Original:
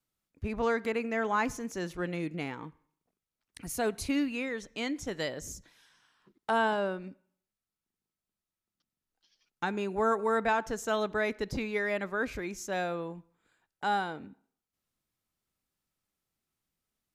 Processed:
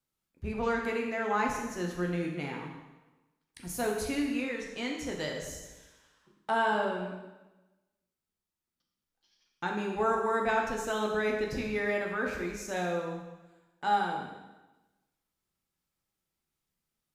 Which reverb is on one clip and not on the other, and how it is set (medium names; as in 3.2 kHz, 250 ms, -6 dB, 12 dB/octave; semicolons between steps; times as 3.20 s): plate-style reverb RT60 1.1 s, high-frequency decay 0.95×, DRR -0.5 dB; trim -3 dB